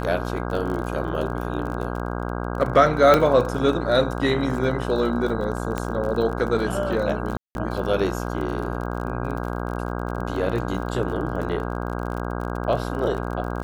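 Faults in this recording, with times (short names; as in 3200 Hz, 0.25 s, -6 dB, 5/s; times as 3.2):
buzz 60 Hz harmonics 27 -28 dBFS
crackle 35/s -30 dBFS
3.14 pop -4 dBFS
5.78 pop -12 dBFS
7.37–7.55 gap 0.181 s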